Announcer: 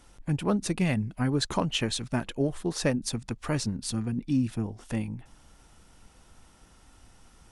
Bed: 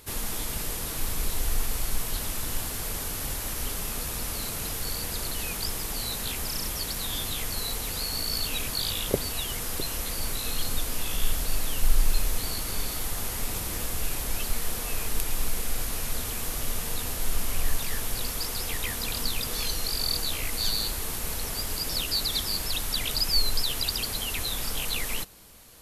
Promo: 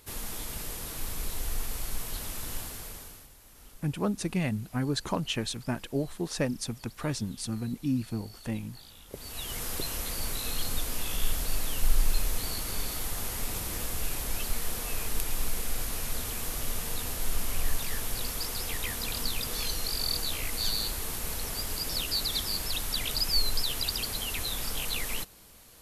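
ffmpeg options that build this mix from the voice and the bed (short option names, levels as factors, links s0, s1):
-filter_complex "[0:a]adelay=3550,volume=0.708[s0];[1:a]volume=5.31,afade=t=out:st=2.56:d=0.73:silence=0.141254,afade=t=in:st=9.09:d=0.54:silence=0.1[s1];[s0][s1]amix=inputs=2:normalize=0"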